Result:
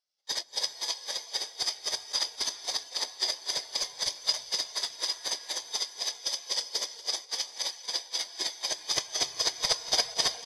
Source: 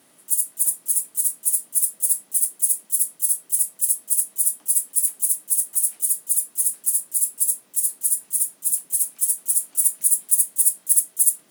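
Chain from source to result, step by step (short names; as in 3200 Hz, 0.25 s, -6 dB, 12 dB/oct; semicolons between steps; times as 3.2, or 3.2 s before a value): FFT order left unsorted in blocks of 128 samples; HPF 1400 Hz 6 dB/oct; resonant high shelf 3200 Hz +8 dB, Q 1.5; overloaded stage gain 2 dB; tempo 1.1×; tape spacing loss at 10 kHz 25 dB; echo 0.237 s -12.5 dB; non-linear reverb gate 0.43 s rising, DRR 8 dB; spectral expander 1.5:1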